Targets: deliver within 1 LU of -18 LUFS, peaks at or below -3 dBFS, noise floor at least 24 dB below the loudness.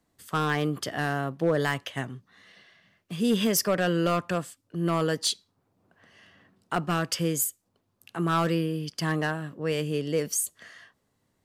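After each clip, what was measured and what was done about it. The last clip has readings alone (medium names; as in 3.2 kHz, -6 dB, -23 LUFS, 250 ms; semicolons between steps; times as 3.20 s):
clipped samples 0.5%; clipping level -16.5 dBFS; loudness -28.0 LUFS; peak level -16.5 dBFS; loudness target -18.0 LUFS
-> clip repair -16.5 dBFS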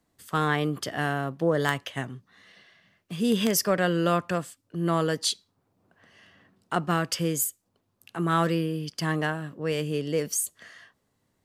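clipped samples 0.0%; loudness -27.0 LUFS; peak level -7.5 dBFS; loudness target -18.0 LUFS
-> trim +9 dB; peak limiter -3 dBFS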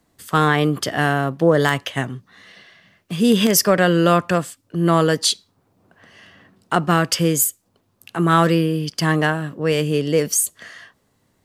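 loudness -18.5 LUFS; peak level -3.0 dBFS; noise floor -65 dBFS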